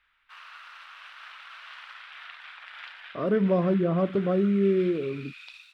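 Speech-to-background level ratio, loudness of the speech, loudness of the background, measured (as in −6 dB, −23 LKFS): 19.5 dB, −25.0 LKFS, −44.5 LKFS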